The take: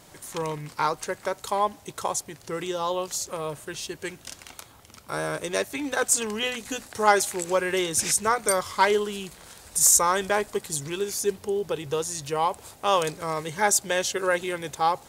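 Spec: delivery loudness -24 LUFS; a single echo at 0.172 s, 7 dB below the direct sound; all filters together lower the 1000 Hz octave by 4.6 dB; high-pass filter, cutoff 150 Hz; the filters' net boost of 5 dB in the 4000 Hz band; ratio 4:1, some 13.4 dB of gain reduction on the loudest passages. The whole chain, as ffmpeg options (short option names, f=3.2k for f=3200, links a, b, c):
-af "highpass=150,equalizer=f=1k:t=o:g=-6,equalizer=f=4k:t=o:g=7,acompressor=threshold=-29dB:ratio=4,aecho=1:1:172:0.447,volume=7.5dB"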